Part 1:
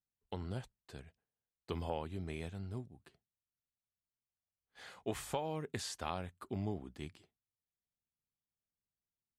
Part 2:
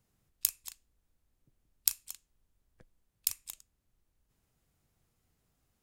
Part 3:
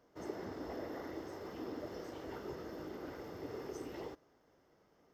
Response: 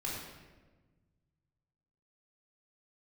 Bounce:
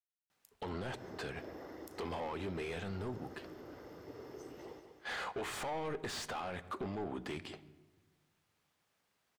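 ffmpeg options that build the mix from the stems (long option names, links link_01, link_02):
-filter_complex "[0:a]acompressor=threshold=-40dB:ratio=6,asplit=2[link_01][link_02];[link_02]highpass=frequency=720:poles=1,volume=33dB,asoftclip=type=tanh:threshold=-23dB[link_03];[link_01][link_03]amix=inputs=2:normalize=0,lowpass=frequency=1600:poles=1,volume=-6dB,adelay=300,volume=-1.5dB,asplit=2[link_04][link_05];[link_05]volume=-18.5dB[link_06];[1:a]aeval=exprs='val(0)*pow(10,-32*if(lt(mod(-0.97*n/s,1),2*abs(-0.97)/1000),1-mod(-0.97*n/s,1)/(2*abs(-0.97)/1000),(mod(-0.97*n/s,1)-2*abs(-0.97)/1000)/(1-2*abs(-0.97)/1000))/20)':channel_layout=same,volume=-19.5dB[link_07];[2:a]adelay=650,volume=-5.5dB,asplit=2[link_08][link_09];[link_09]volume=-8.5dB[link_10];[3:a]atrim=start_sample=2205[link_11];[link_06][link_11]afir=irnorm=-1:irlink=0[link_12];[link_10]aecho=0:1:196|392|588|784|980|1176:1|0.4|0.16|0.064|0.0256|0.0102[link_13];[link_04][link_07][link_08][link_12][link_13]amix=inputs=5:normalize=0,alimiter=level_in=9.5dB:limit=-24dB:level=0:latency=1:release=94,volume=-9.5dB"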